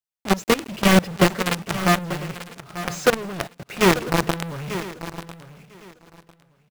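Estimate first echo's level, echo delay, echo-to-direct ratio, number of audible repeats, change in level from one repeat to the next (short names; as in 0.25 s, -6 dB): -13.0 dB, 0.89 s, -12.0 dB, 4, no steady repeat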